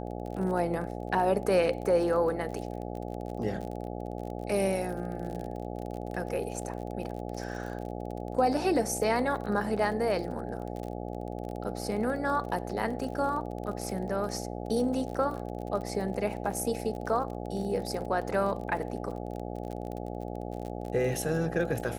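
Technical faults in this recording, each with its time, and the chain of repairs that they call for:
buzz 60 Hz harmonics 14 -37 dBFS
crackle 37/s -36 dBFS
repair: de-click; de-hum 60 Hz, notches 14

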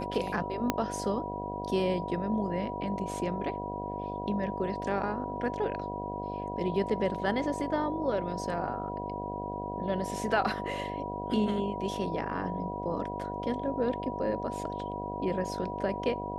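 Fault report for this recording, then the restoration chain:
buzz 50 Hz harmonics 15 -38 dBFS
tone 970 Hz -37 dBFS
0.7 pop -11 dBFS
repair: de-click; de-hum 50 Hz, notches 15; notch 970 Hz, Q 30

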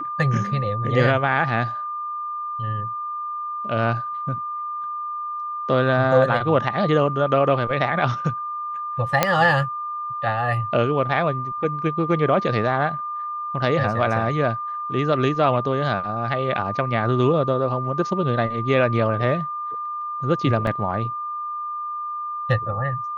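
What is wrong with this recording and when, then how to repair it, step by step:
tone 1200 Hz -26 dBFS
9.23 pop -1 dBFS
20.67 gap 2.1 ms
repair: de-click; notch 1200 Hz, Q 30; interpolate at 20.67, 2.1 ms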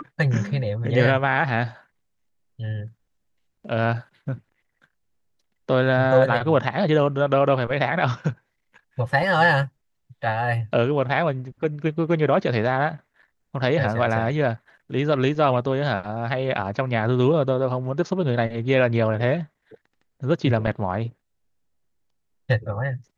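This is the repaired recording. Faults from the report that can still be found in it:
none

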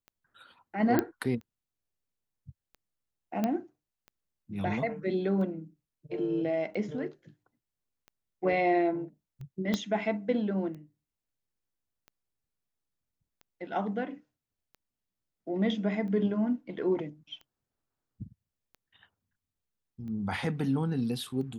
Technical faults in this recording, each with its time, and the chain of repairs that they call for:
tick 45 rpm -35 dBFS
0.99 pop -13 dBFS
3.44 pop -16 dBFS
9.74 pop -16 dBFS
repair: de-click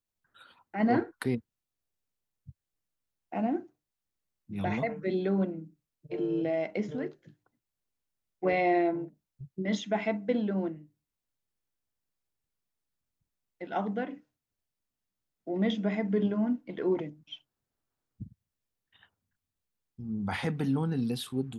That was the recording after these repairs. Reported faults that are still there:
9.74 pop

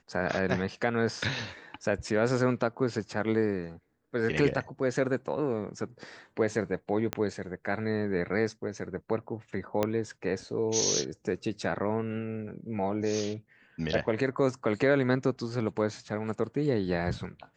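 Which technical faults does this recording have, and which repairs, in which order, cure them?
7.13 pop -14 dBFS
9.83 pop -13 dBFS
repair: de-click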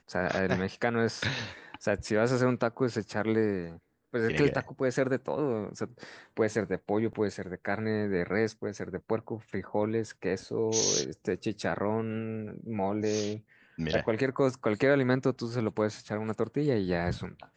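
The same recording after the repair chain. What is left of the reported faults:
7.13 pop
9.83 pop

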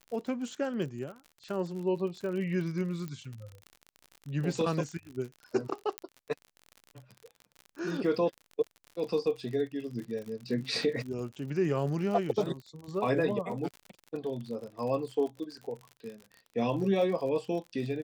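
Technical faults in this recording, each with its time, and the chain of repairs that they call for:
crackle 51/s -38 dBFS
3.08 pop -26 dBFS
5.98 pop -17 dBFS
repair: de-click

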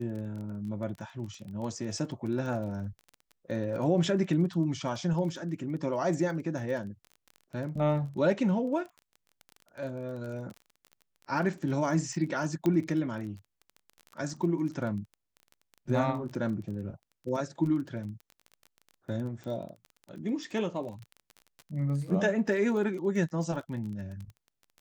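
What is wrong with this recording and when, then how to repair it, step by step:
crackle 23/s -38 dBFS
12.66 pop -17 dBFS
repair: de-click

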